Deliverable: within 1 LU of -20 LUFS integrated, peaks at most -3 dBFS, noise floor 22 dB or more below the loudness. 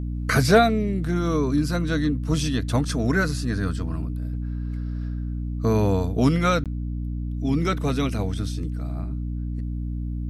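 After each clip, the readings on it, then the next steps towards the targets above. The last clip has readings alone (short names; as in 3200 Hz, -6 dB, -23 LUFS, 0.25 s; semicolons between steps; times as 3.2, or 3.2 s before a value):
dropouts 1; longest dropout 17 ms; hum 60 Hz; harmonics up to 300 Hz; hum level -26 dBFS; loudness -24.5 LUFS; peak -5.0 dBFS; loudness target -20.0 LUFS
-> interpolate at 6.64, 17 ms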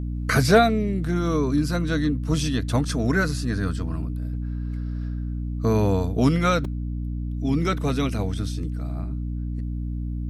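dropouts 0; hum 60 Hz; harmonics up to 300 Hz; hum level -26 dBFS
-> notches 60/120/180/240/300 Hz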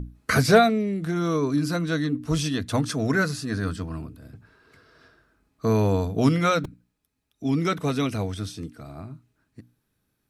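hum none; loudness -24.0 LUFS; peak -5.5 dBFS; loudness target -20.0 LUFS
-> gain +4 dB; limiter -3 dBFS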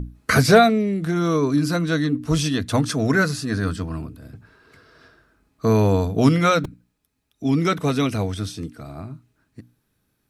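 loudness -20.5 LUFS; peak -3.0 dBFS; noise floor -72 dBFS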